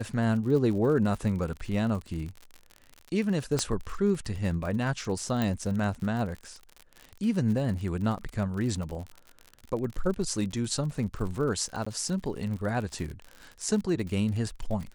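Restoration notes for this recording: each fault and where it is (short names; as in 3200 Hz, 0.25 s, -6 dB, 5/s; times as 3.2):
crackle 54/s -34 dBFS
3.59 pop -13 dBFS
5.42 pop -15 dBFS
11.85–11.87 gap 15 ms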